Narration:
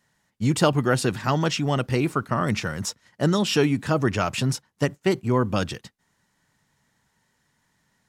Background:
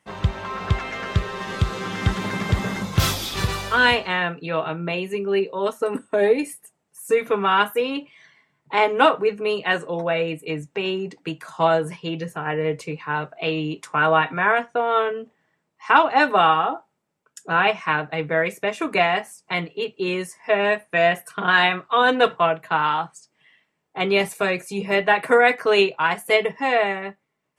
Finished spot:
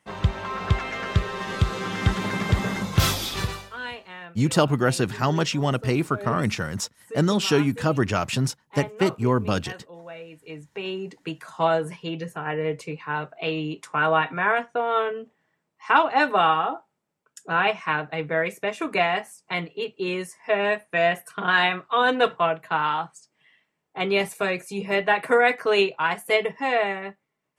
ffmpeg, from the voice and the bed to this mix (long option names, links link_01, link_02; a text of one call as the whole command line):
ffmpeg -i stem1.wav -i stem2.wav -filter_complex "[0:a]adelay=3950,volume=0dB[link_01];[1:a]volume=14dB,afade=type=out:start_time=3.28:duration=0.42:silence=0.141254,afade=type=in:start_time=10.3:duration=0.92:silence=0.188365[link_02];[link_01][link_02]amix=inputs=2:normalize=0" out.wav